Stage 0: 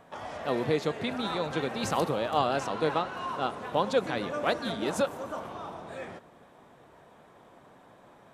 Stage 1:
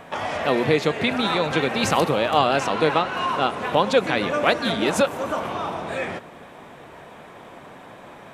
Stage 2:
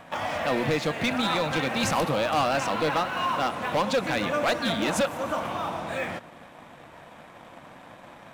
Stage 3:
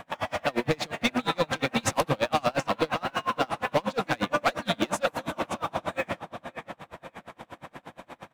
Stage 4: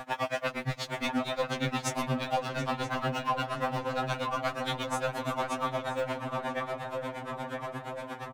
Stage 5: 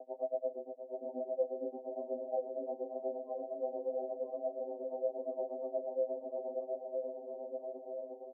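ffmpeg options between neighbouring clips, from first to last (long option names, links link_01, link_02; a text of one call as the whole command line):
ffmpeg -i in.wav -filter_complex "[0:a]equalizer=frequency=2400:width=1.6:gain=6,bandreject=frequency=60:width_type=h:width=6,bandreject=frequency=120:width_type=h:width=6,asplit=2[link_01][link_02];[link_02]acompressor=threshold=-35dB:ratio=6,volume=2dB[link_03];[link_01][link_03]amix=inputs=2:normalize=0,volume=5dB" out.wav
ffmpeg -i in.wav -filter_complex "[0:a]equalizer=frequency=410:width=7.4:gain=-13.5,asplit=2[link_01][link_02];[link_02]acrusher=bits=5:mix=0:aa=0.5,volume=-8.5dB[link_03];[link_01][link_03]amix=inputs=2:normalize=0,asoftclip=type=hard:threshold=-14dB,volume=-5dB" out.wav
ffmpeg -i in.wav -filter_complex "[0:a]asplit=2[link_01][link_02];[link_02]alimiter=level_in=2dB:limit=-24dB:level=0:latency=1:release=206,volume=-2dB,volume=2dB[link_03];[link_01][link_03]amix=inputs=2:normalize=0,asplit=2[link_04][link_05];[link_05]adelay=551,lowpass=frequency=5000:poles=1,volume=-10dB,asplit=2[link_06][link_07];[link_07]adelay=551,lowpass=frequency=5000:poles=1,volume=0.46,asplit=2[link_08][link_09];[link_09]adelay=551,lowpass=frequency=5000:poles=1,volume=0.46,asplit=2[link_10][link_11];[link_11]adelay=551,lowpass=frequency=5000:poles=1,volume=0.46,asplit=2[link_12][link_13];[link_13]adelay=551,lowpass=frequency=5000:poles=1,volume=0.46[link_14];[link_04][link_06][link_08][link_10][link_12][link_14]amix=inputs=6:normalize=0,aeval=exprs='val(0)*pow(10,-32*(0.5-0.5*cos(2*PI*8.5*n/s))/20)':channel_layout=same" out.wav
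ffmpeg -i in.wav -filter_complex "[0:a]acompressor=threshold=-32dB:ratio=10,asplit=2[link_01][link_02];[link_02]adelay=975,lowpass=frequency=1300:poles=1,volume=-3dB,asplit=2[link_03][link_04];[link_04]adelay=975,lowpass=frequency=1300:poles=1,volume=0.46,asplit=2[link_05][link_06];[link_06]adelay=975,lowpass=frequency=1300:poles=1,volume=0.46,asplit=2[link_07][link_08];[link_08]adelay=975,lowpass=frequency=1300:poles=1,volume=0.46,asplit=2[link_09][link_10];[link_10]adelay=975,lowpass=frequency=1300:poles=1,volume=0.46,asplit=2[link_11][link_12];[link_12]adelay=975,lowpass=frequency=1300:poles=1,volume=0.46[link_13];[link_01][link_03][link_05][link_07][link_09][link_11][link_13]amix=inputs=7:normalize=0,afftfilt=real='re*2.45*eq(mod(b,6),0)':imag='im*2.45*eq(mod(b,6),0)':win_size=2048:overlap=0.75,volume=7dB" out.wav
ffmpeg -i in.wav -af "asuperpass=centerf=450:order=12:qfactor=1.1,volume=-1dB" out.wav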